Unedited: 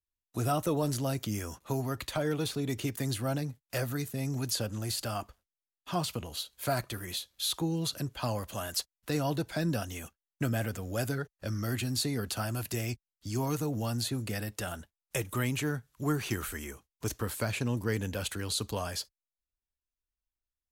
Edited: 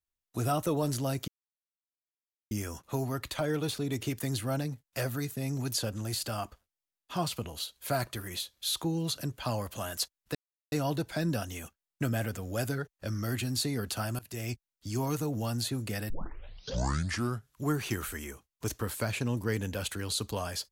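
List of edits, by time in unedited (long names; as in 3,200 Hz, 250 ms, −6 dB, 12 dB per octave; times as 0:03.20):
0:01.28: splice in silence 1.23 s
0:09.12: splice in silence 0.37 s
0:12.59–0:12.92: fade in, from −22 dB
0:14.50: tape start 1.42 s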